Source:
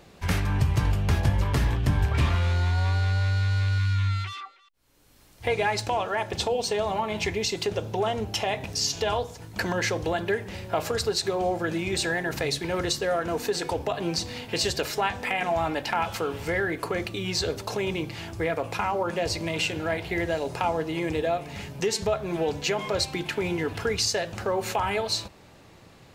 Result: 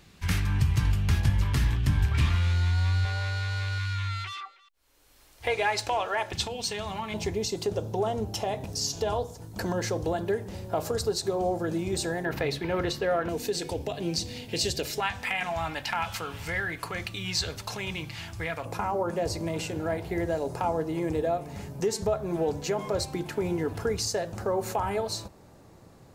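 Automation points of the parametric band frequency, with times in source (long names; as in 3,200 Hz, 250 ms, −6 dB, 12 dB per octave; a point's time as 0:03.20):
parametric band −12 dB 1.7 octaves
570 Hz
from 0:03.05 160 Hz
from 0:06.32 540 Hz
from 0:07.14 2,300 Hz
from 0:12.25 7,700 Hz
from 0:13.29 1,200 Hz
from 0:15.00 400 Hz
from 0:18.65 2,800 Hz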